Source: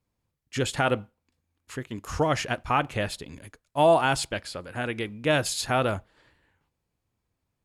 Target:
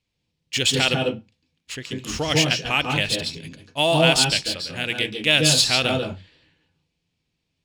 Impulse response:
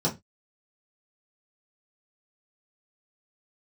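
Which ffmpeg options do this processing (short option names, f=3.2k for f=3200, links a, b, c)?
-filter_complex "[0:a]highshelf=f=1.9k:t=q:w=1.5:g=13.5,adynamicsmooth=sensitivity=3.5:basefreq=5.2k,asplit=2[a][b];[1:a]atrim=start_sample=2205,adelay=140[c];[b][c]afir=irnorm=-1:irlink=0,volume=-13.5dB[d];[a][d]amix=inputs=2:normalize=0,volume=-1.5dB"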